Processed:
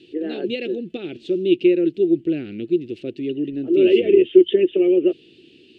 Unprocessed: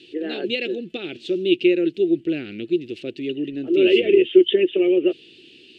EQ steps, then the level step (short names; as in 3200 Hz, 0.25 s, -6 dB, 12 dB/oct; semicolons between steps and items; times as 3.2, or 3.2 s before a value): tilt shelf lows +5 dB, about 750 Hz; -1.5 dB